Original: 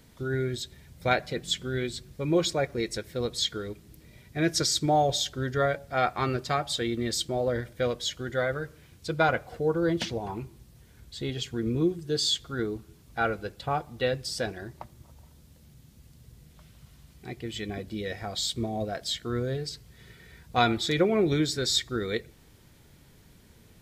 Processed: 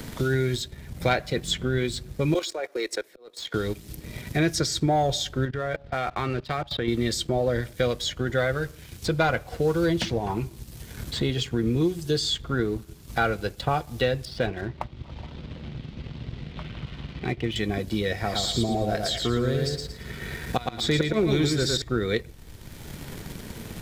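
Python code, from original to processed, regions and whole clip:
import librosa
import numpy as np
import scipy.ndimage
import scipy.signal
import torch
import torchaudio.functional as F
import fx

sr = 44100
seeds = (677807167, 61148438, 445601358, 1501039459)

y = fx.chain(x, sr, fx.highpass(hz=370.0, slope=24),
    fx.level_steps(step_db=12),
    fx.auto_swell(attack_ms=782.0), at=(2.34, 3.54))
y = fx.chain(y, sr, fx.lowpass(hz=3800.0, slope=24),
    fx.level_steps(step_db=18), at=(5.45, 6.88))
y = fx.chain(y, sr, fx.lowpass(hz=3400.0, slope=24),
    fx.notch(hz=1700.0, q=22.0), at=(14.25, 17.56))
y = fx.chain(y, sr, fx.gate_flip(shuts_db=-14.0, range_db=-25),
    fx.echo_feedback(ms=113, feedback_pct=28, wet_db=-4.0), at=(18.14, 21.82))
y = fx.low_shelf(y, sr, hz=65.0, db=11.0)
y = fx.leveller(y, sr, passes=1)
y = fx.band_squash(y, sr, depth_pct=70)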